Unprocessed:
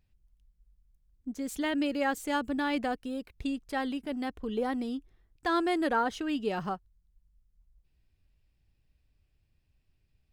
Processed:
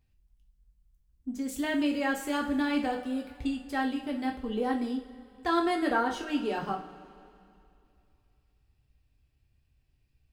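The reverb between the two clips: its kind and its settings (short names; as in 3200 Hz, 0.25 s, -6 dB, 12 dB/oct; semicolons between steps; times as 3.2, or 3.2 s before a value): two-slope reverb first 0.4 s, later 2.7 s, from -18 dB, DRR 0.5 dB; gain -2 dB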